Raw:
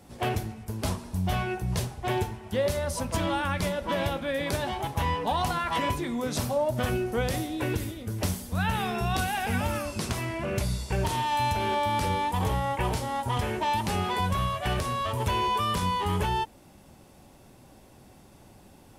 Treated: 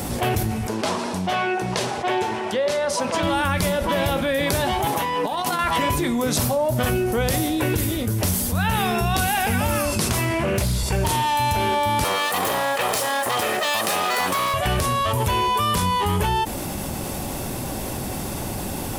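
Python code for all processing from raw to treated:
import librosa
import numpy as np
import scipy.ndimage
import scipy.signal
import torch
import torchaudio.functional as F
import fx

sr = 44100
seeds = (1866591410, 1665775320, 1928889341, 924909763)

y = fx.chain(x, sr, fx.highpass(hz=340.0, slope=12),
    fx.air_absorb(metres=94.0), at=(0.67, 3.23))
y = fx.chain(y, sr, fx.cheby1_highpass(hz=260.0, order=2),
    fx.over_compress(threshold_db=-34.0, ratio=-0.5), at=(4.86, 5.59))
y = fx.chain(y, sr, fx.highpass(hz=52.0, slope=24),
    fx.doppler_dist(depth_ms=0.29), at=(10.32, 10.83))
y = fx.chain(y, sr, fx.lower_of_two(delay_ms=1.6),
    fx.highpass(hz=320.0, slope=12), at=(12.04, 14.54))
y = fx.high_shelf(y, sr, hz=9800.0, db=10.5)
y = fx.env_flatten(y, sr, amount_pct=70)
y = y * librosa.db_to_amplitude(3.5)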